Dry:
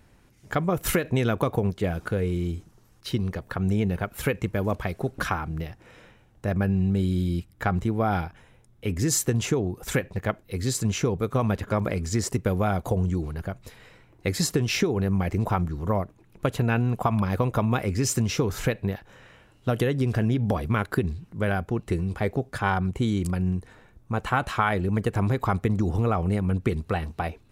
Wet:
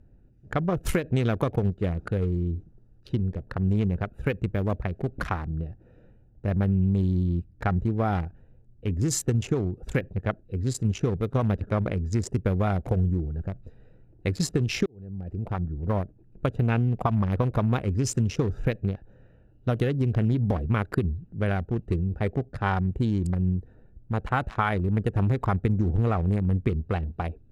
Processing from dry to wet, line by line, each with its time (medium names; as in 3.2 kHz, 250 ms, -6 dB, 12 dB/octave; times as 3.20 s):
14.86–16.02 s: fade in
whole clip: local Wiener filter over 41 samples; Bessel low-pass 10 kHz, order 2; bass shelf 83 Hz +8 dB; trim -1.5 dB